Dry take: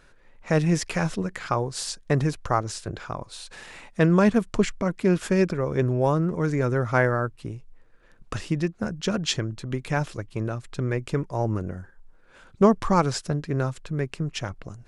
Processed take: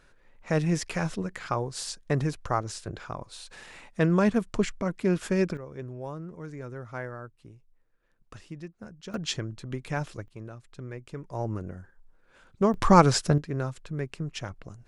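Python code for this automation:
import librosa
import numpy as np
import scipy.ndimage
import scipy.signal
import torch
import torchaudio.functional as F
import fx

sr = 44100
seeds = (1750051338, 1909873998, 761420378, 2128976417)

y = fx.gain(x, sr, db=fx.steps((0.0, -4.0), (5.57, -15.5), (9.14, -5.5), (10.28, -13.0), (11.24, -6.0), (12.74, 4.0), (13.38, -5.0)))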